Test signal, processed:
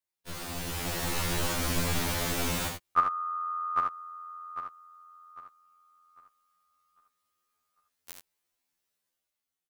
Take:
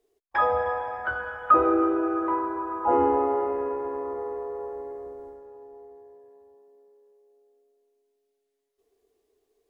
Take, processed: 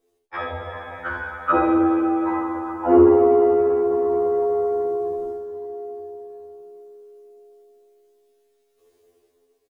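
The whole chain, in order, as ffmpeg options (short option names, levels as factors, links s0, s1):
-filter_complex "[0:a]asplit=2[s0][s1];[s1]aecho=0:1:46|77:0.376|0.501[s2];[s0][s2]amix=inputs=2:normalize=0,dynaudnorm=f=150:g=11:m=2.82,afftfilt=real='re*2*eq(mod(b,4),0)':imag='im*2*eq(mod(b,4),0)':win_size=2048:overlap=0.75,volume=1.58"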